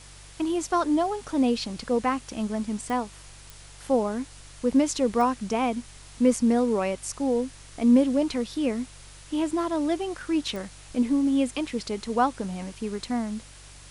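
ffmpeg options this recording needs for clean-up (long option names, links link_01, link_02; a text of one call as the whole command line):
ffmpeg -i in.wav -af "adeclick=threshold=4,bandreject=frequency=48.1:width_type=h:width=4,bandreject=frequency=96.2:width_type=h:width=4,bandreject=frequency=144.3:width_type=h:width=4,afftdn=noise_reduction=24:noise_floor=-47" out.wav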